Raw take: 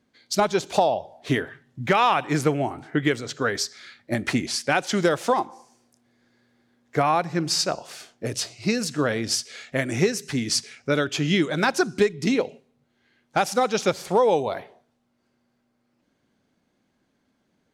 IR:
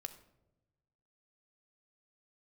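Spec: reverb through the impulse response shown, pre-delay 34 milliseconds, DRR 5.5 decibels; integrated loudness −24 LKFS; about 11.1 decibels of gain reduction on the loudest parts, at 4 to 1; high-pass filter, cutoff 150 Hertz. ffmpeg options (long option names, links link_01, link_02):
-filter_complex "[0:a]highpass=150,acompressor=threshold=-29dB:ratio=4,asplit=2[link_01][link_02];[1:a]atrim=start_sample=2205,adelay=34[link_03];[link_02][link_03]afir=irnorm=-1:irlink=0,volume=-2dB[link_04];[link_01][link_04]amix=inputs=2:normalize=0,volume=8dB"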